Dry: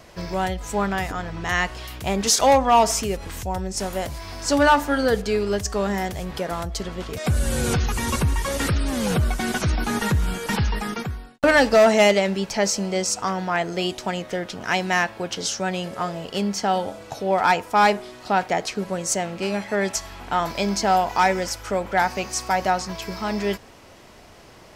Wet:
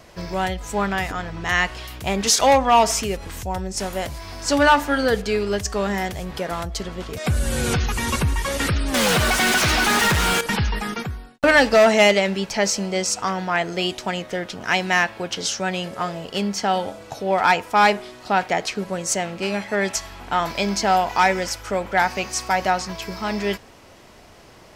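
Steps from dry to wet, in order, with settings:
dynamic equaliser 2,500 Hz, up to +4 dB, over −35 dBFS, Q 0.74
0:08.94–0:10.41: mid-hump overdrive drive 31 dB, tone 7,400 Hz, clips at −12.5 dBFS

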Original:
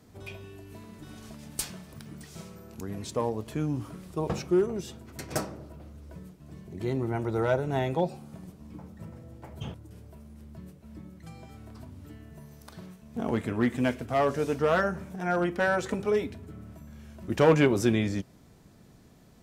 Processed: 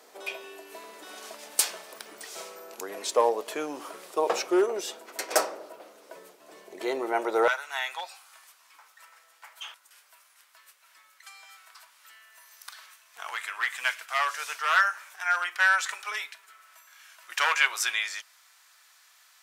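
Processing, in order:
high-pass filter 460 Hz 24 dB per octave, from 0:07.48 1,200 Hz
level +9 dB

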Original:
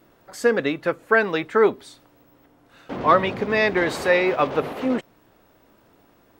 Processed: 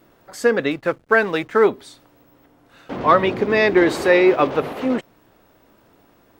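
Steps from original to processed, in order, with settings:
0:00.71–0:01.67: slack as between gear wheels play −39.5 dBFS
0:03.22–0:04.51: parametric band 340 Hz +8 dB 0.54 octaves
level +2 dB

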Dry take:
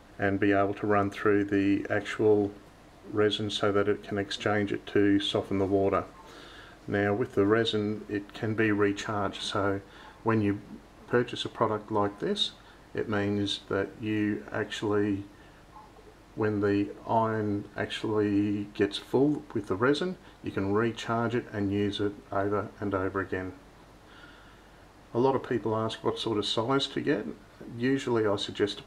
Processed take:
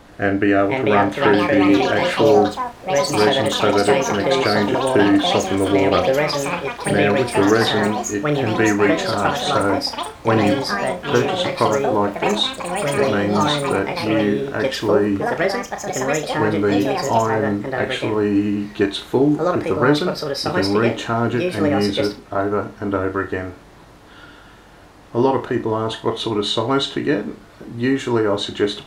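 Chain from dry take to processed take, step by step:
delay with pitch and tempo change per echo 549 ms, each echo +5 semitones, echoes 3
flutter between parallel walls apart 5.8 metres, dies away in 0.23 s
level +8 dB

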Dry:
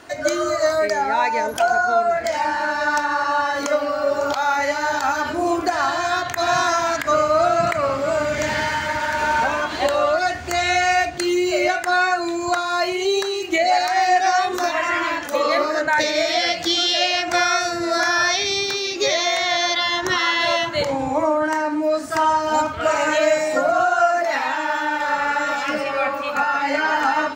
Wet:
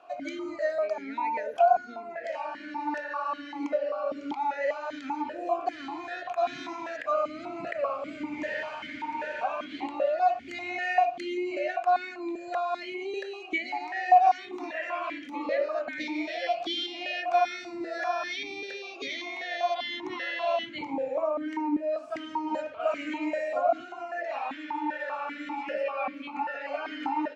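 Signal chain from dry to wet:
formant filter that steps through the vowels 5.1 Hz

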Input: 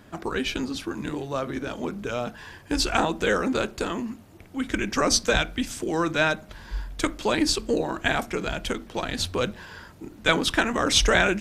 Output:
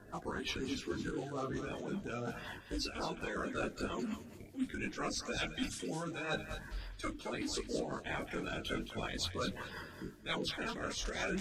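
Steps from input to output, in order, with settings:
spectral magnitudes quantised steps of 30 dB
reversed playback
downward compressor 6 to 1, threshold −33 dBFS, peak gain reduction 16.5 dB
reversed playback
rotating-speaker cabinet horn 5.5 Hz
feedback echo with a high-pass in the loop 217 ms, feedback 15%, high-pass 770 Hz, level −8 dB
micro pitch shift up and down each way 27 cents
level +3 dB

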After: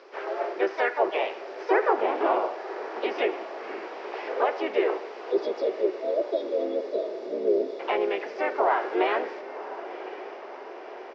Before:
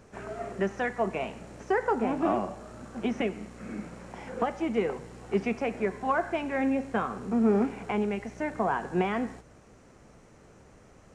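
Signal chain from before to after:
pitch-shifted copies added −3 semitones −3 dB, +4 semitones −7 dB
time-frequency box erased 0:05.31–0:07.80, 680–3,300 Hz
in parallel at −0.5 dB: brickwall limiter −22.5 dBFS, peak gain reduction 12 dB
on the sum: Chebyshev band-pass filter 370–5,100 Hz, order 4
on a send: feedback delay with all-pass diffusion 1,050 ms, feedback 63%, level −13.5 dB

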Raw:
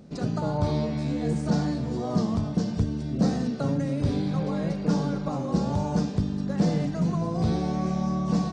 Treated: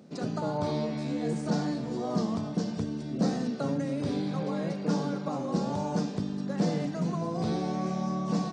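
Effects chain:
high-pass filter 190 Hz 12 dB per octave
level −1.5 dB

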